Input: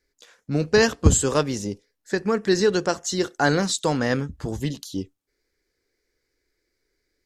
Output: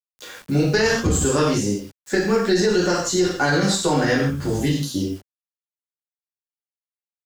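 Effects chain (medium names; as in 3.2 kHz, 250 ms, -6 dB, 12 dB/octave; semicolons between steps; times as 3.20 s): Chebyshev shaper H 3 -32 dB, 4 -21 dB, 5 -30 dB, 7 -42 dB, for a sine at -3 dBFS; gated-style reverb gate 190 ms falling, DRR -7 dB; bit crusher 8-bit; loudness maximiser +5.5 dB; three bands compressed up and down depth 40%; trim -8.5 dB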